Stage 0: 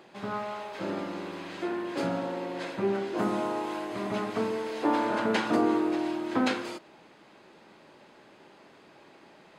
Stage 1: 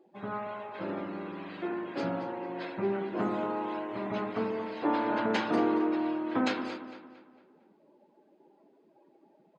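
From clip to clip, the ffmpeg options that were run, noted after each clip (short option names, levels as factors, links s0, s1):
-filter_complex "[0:a]afftdn=nr=23:nf=-47,asplit=2[s0][s1];[s1]adelay=227,lowpass=f=4200:p=1,volume=0.299,asplit=2[s2][s3];[s3]adelay=227,lowpass=f=4200:p=1,volume=0.43,asplit=2[s4][s5];[s5]adelay=227,lowpass=f=4200:p=1,volume=0.43,asplit=2[s6][s7];[s7]adelay=227,lowpass=f=4200:p=1,volume=0.43,asplit=2[s8][s9];[s9]adelay=227,lowpass=f=4200:p=1,volume=0.43[s10];[s0][s2][s4][s6][s8][s10]amix=inputs=6:normalize=0,volume=0.75"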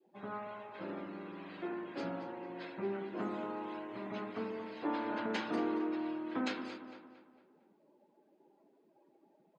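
-filter_complex "[0:a]adynamicequalizer=threshold=0.00794:dfrequency=710:dqfactor=0.76:tfrequency=710:tqfactor=0.76:attack=5:release=100:ratio=0.375:range=2:mode=cutabove:tftype=bell,acrossover=split=150[s0][s1];[s0]acompressor=threshold=0.00126:ratio=6[s2];[s2][s1]amix=inputs=2:normalize=0,volume=0.531"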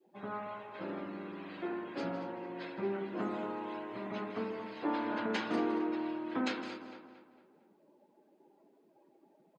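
-af "aecho=1:1:162:0.2,volume=1.26"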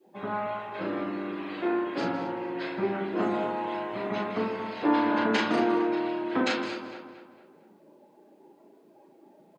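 -filter_complex "[0:a]asplit=2[s0][s1];[s1]adelay=37,volume=0.631[s2];[s0][s2]amix=inputs=2:normalize=0,volume=2.51"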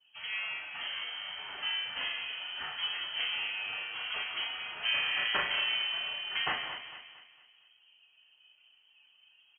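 -af "equalizer=f=250:t=o:w=1:g=-10,equalizer=f=500:t=o:w=1:g=-5,equalizer=f=1000:t=o:w=1:g=-4,lowpass=f=2900:t=q:w=0.5098,lowpass=f=2900:t=q:w=0.6013,lowpass=f=2900:t=q:w=0.9,lowpass=f=2900:t=q:w=2.563,afreqshift=-3400"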